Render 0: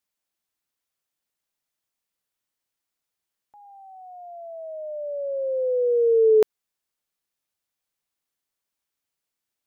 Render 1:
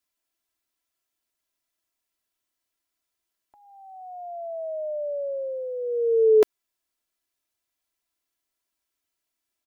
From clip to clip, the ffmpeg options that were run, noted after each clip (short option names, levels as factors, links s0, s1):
-af "aecho=1:1:3:0.63"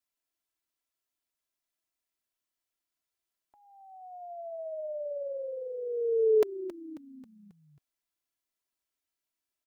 -filter_complex "[0:a]asplit=6[s0][s1][s2][s3][s4][s5];[s1]adelay=270,afreqshift=-57,volume=0.178[s6];[s2]adelay=540,afreqshift=-114,volume=0.0891[s7];[s3]adelay=810,afreqshift=-171,volume=0.0447[s8];[s4]adelay=1080,afreqshift=-228,volume=0.0221[s9];[s5]adelay=1350,afreqshift=-285,volume=0.0111[s10];[s0][s6][s7][s8][s9][s10]amix=inputs=6:normalize=0,volume=0.473"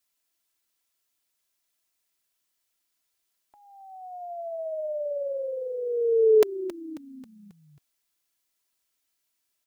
-af "highshelf=f=2100:g=6.5,volume=1.78"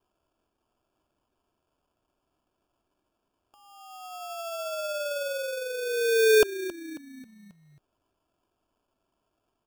-af "acrusher=samples=22:mix=1:aa=0.000001,volume=0.891"